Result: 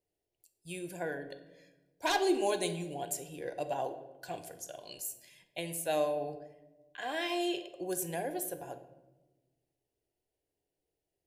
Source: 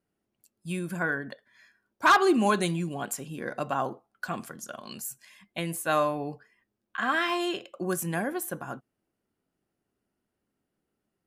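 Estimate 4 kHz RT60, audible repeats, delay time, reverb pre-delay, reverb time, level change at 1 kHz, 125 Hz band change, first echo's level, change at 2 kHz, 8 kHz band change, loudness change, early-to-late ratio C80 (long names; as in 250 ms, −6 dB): 0.65 s, no echo audible, no echo audible, 3 ms, 1.1 s, −9.5 dB, −11.0 dB, no echo audible, −11.5 dB, −2.5 dB, −7.0 dB, 13.5 dB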